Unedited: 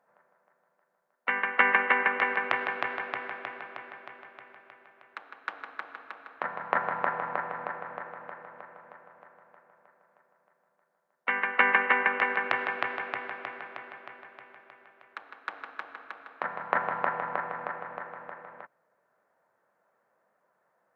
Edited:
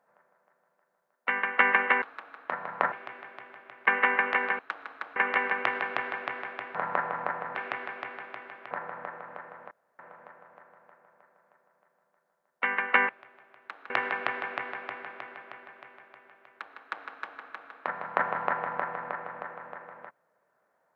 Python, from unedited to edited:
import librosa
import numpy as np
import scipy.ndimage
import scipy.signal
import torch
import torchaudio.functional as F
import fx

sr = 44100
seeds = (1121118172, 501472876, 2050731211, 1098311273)

y = fx.edit(x, sr, fx.swap(start_s=2.02, length_s=1.59, other_s=5.94, other_length_s=0.9),
    fx.swap(start_s=4.56, length_s=0.81, other_s=11.74, other_length_s=0.72),
    fx.insert_room_tone(at_s=8.64, length_s=0.28),
    fx.duplicate(start_s=12.97, length_s=1.16, to_s=7.64), tone=tone)